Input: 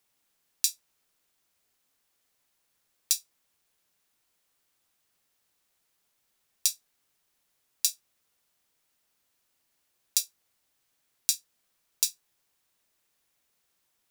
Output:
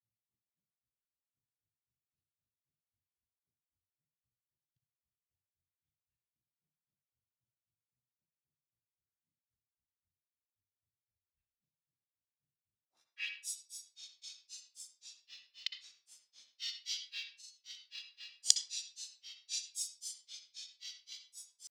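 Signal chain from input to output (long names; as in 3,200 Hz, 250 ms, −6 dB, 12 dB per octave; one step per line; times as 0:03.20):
meter weighting curve D
low-pass that shuts in the quiet parts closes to 1,500 Hz, open at −21 dBFS
parametric band 5,400 Hz −8 dB 0.55 octaves
tempo change 0.65×
feedback delay with all-pass diffusion 1,267 ms, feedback 42%, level −14.5 dB
gate with flip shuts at −13 dBFS, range −26 dB
low-pass filter sweep 110 Hz → 5,700 Hz, 0:12.67–0:13.33
granular cloud 160 ms, grains 3.8 per second, spray 35 ms, pitch spread up and down by 7 semitones
on a send at −7 dB: convolution reverb RT60 0.35 s, pre-delay 57 ms
on the sum: level +4.5 dB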